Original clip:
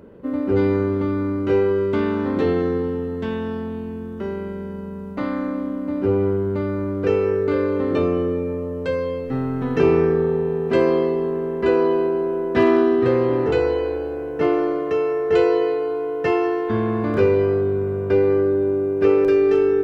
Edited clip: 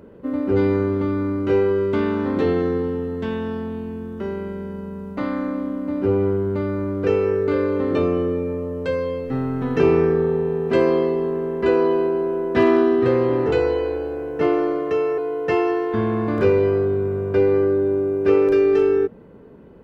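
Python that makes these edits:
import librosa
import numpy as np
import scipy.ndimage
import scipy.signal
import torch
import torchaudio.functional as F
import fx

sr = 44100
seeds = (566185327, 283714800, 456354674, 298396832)

y = fx.edit(x, sr, fx.cut(start_s=15.18, length_s=0.76), tone=tone)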